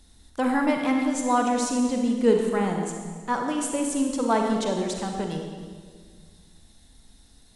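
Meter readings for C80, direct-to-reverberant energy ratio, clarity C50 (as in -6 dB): 4.5 dB, 2.0 dB, 3.0 dB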